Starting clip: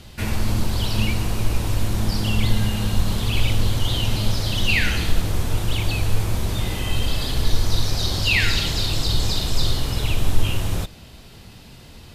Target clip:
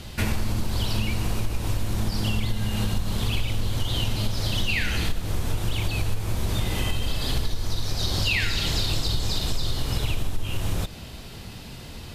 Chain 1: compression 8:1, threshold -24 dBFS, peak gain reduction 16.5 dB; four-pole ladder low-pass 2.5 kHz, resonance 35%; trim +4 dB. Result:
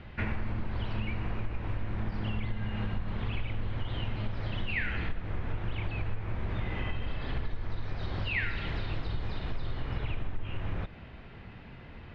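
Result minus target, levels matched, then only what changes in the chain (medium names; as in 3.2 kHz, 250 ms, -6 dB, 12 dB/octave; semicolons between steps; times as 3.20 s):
2 kHz band +3.0 dB
remove: four-pole ladder low-pass 2.5 kHz, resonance 35%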